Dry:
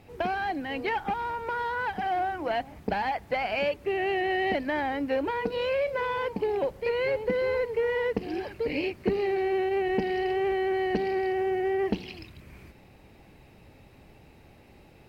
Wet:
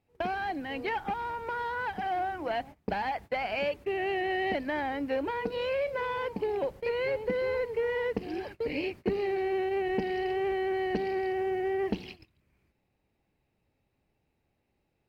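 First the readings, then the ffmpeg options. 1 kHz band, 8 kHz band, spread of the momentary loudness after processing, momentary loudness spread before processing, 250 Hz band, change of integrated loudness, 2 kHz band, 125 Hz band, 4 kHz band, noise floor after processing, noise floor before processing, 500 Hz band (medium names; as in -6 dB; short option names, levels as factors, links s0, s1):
-3.0 dB, no reading, 4 LU, 4 LU, -3.0 dB, -3.0 dB, -3.0 dB, -3.0 dB, -3.0 dB, -77 dBFS, -54 dBFS, -3.0 dB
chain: -af "agate=range=0.1:threshold=0.01:ratio=16:detection=peak,volume=0.708"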